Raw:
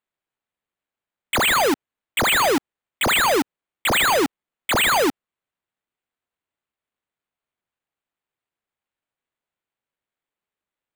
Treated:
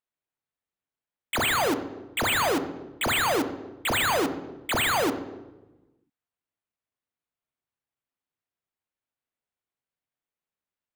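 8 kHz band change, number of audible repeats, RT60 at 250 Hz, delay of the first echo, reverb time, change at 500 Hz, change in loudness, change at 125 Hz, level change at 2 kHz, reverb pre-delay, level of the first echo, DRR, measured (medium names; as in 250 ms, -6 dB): -6.5 dB, no echo, 1.4 s, no echo, 1.1 s, -5.5 dB, -6.0 dB, -2.5 dB, -6.0 dB, 3 ms, no echo, 8.5 dB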